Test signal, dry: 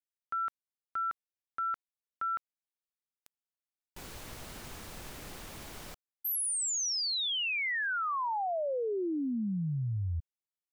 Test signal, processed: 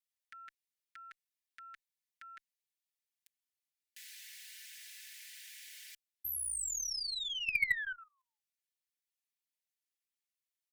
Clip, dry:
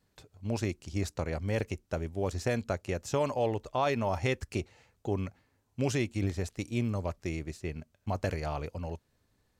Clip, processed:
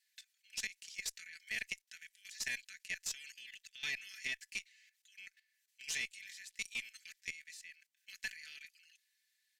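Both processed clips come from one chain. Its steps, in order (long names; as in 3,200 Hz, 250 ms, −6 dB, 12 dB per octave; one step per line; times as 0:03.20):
Butterworth high-pass 1,700 Hz 72 dB per octave
comb filter 4.6 ms, depth 79%
output level in coarse steps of 14 dB
harmonic generator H 6 −26 dB, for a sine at −24 dBFS
level +4 dB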